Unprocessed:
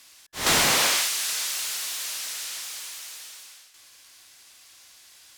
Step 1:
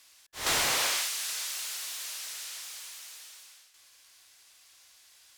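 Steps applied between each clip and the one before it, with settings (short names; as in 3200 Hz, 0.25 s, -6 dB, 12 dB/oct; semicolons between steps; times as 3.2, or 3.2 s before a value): bell 200 Hz -8 dB 1.2 oct; gain -6.5 dB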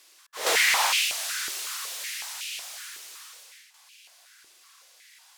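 stepped high-pass 5.4 Hz 370–2600 Hz; gain +2 dB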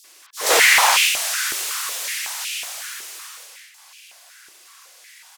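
bands offset in time highs, lows 40 ms, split 4000 Hz; gain +9 dB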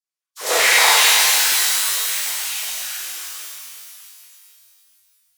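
gate -40 dBFS, range -41 dB; shimmer reverb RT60 2.6 s, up +12 st, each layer -2 dB, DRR -3 dB; gain -5 dB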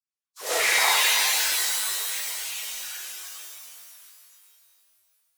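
bin magnitudes rounded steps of 15 dB; digital reverb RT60 4.4 s, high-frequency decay 0.3×, pre-delay 20 ms, DRR 14.5 dB; gain -7 dB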